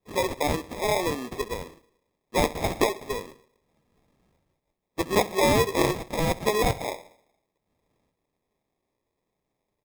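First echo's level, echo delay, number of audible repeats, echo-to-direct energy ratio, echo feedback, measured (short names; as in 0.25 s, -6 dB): -18.0 dB, 66 ms, 3, -17.0 dB, 42%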